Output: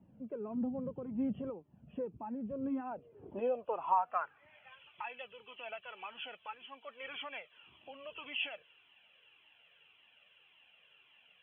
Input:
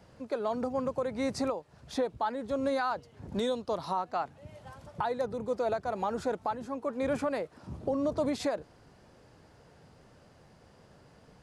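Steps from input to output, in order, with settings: knee-point frequency compression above 2.3 kHz 4:1; band-pass sweep 210 Hz -> 2.9 kHz, 2.60–4.91 s; Shepard-style flanger falling 1.8 Hz; trim +7.5 dB

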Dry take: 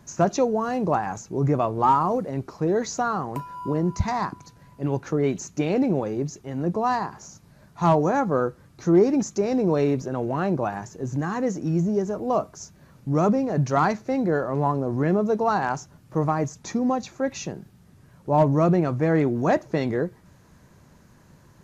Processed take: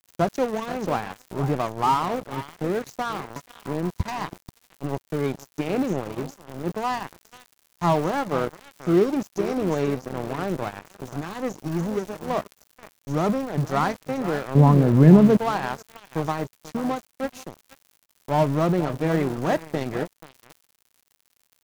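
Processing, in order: delay 484 ms -11.5 dB; crackle 560 per s -32 dBFS; 14.55–15.37 s: peaking EQ 160 Hz +14 dB 2.1 oct; crossover distortion -29 dBFS

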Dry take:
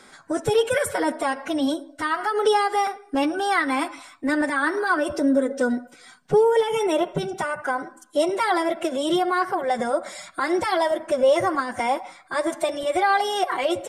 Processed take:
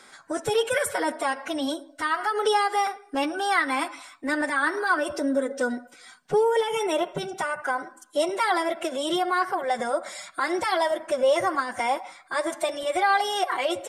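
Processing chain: bass shelf 400 Hz -9 dB

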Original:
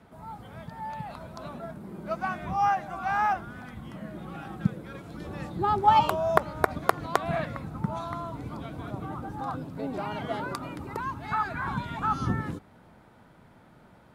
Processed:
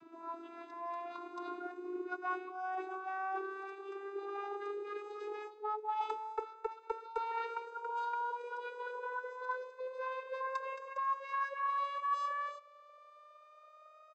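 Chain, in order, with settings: vocoder on a note that slides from E4, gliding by +11 st; reverse; compression 8:1, threshold -36 dBFS, peak gain reduction 22 dB; reverse; comb 0.8 ms, depth 60%; trim +1.5 dB

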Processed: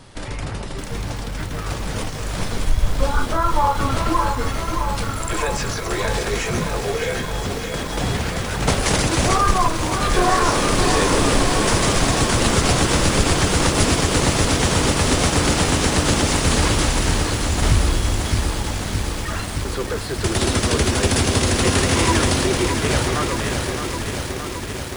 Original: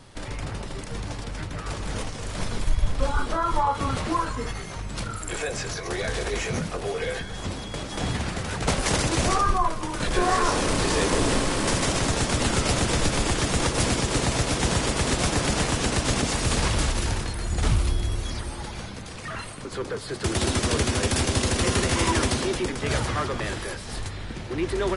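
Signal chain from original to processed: fade out at the end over 2.13 s; bit-crushed delay 618 ms, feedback 80%, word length 7-bit, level -6.5 dB; trim +4.5 dB

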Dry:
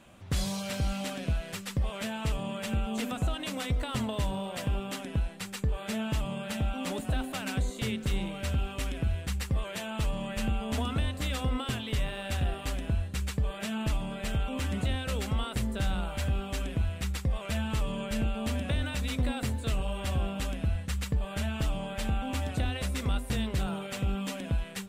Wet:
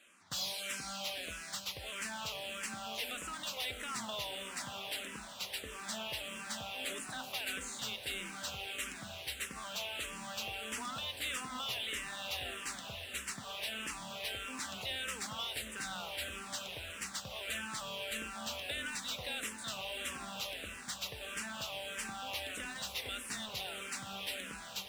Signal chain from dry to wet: high-pass 1.4 kHz 6 dB/octave; peaking EQ 4.5 kHz +3 dB 2.9 oct; in parallel at -8.5 dB: word length cut 8-bit, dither none; on the sum: hard clipper -30 dBFS, distortion -15 dB; on a send: echo that smears into a reverb 894 ms, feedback 68%, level -10 dB; on the sum: barber-pole phaser -1.6 Hz; trim -1 dB

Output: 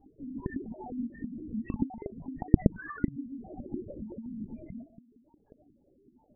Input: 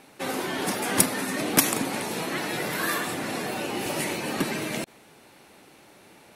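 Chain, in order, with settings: in parallel at -0.5 dB: compression 12:1, threshold -42 dBFS, peak gain reduction 28.5 dB; on the sum: reverb removal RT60 1.1 s; flange 0.37 Hz, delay 6.4 ms, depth 2.6 ms, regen +36%; dynamic bell 110 Hz, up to +3 dB, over -48 dBFS, Q 0.88; on a send at -19 dB: reverberation RT60 2.3 s, pre-delay 80 ms; on the sum: Chebyshev shaper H 5 -26 dB, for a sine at -4.5 dBFS; peaking EQ 220 Hz +5.5 dB 0.61 oct; de-hum 167.9 Hz, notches 9; loudest bins only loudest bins 2; LPC vocoder at 8 kHz whisper; trim -4 dB

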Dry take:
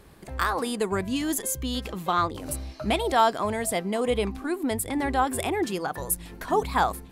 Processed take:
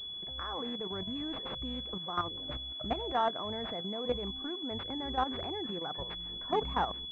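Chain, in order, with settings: level held to a coarse grid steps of 11 dB; class-D stage that switches slowly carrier 3.4 kHz; trim -5 dB

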